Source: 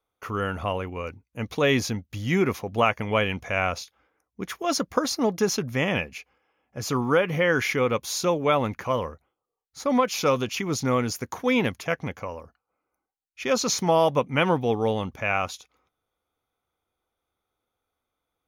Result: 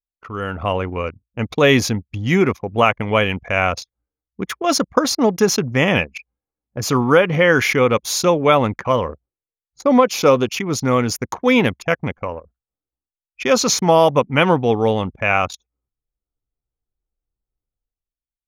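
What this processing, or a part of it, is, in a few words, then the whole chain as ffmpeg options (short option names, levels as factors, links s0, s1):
voice memo with heavy noise removal: -filter_complex "[0:a]asettb=1/sr,asplit=3[s0][s1][s2];[s0]atrim=end=9.094[s3];[s1]atrim=start=9.09:end=10.46,asetpts=PTS-STARTPTS,afade=t=in:d=0.004:c=qsin,afade=t=out:st=1.366:d=0.004:c=qsin,equalizer=f=410:w=0.6:g=5[s4];[s2]atrim=start=10.456[s5];[s3][s4]acrossfade=d=0.004:c1=hsin:c2=qsin[s6];[s6][s5]acrossfade=d=0.004:c1=qsin:c2=hsin,anlmdn=3.98,dynaudnorm=f=120:g=11:m=6.68,volume=0.891"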